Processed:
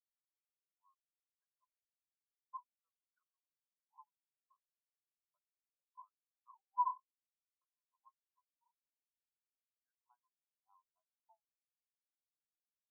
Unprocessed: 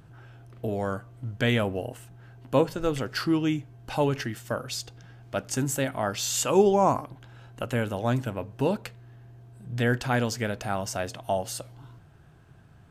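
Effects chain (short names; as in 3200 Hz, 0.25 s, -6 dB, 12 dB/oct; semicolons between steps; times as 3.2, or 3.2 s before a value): Wiener smoothing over 25 samples; compressor 4:1, threshold -32 dBFS, peak gain reduction 14.5 dB; ladder band-pass 1100 Hz, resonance 75%; spectral expander 4:1; gain +4 dB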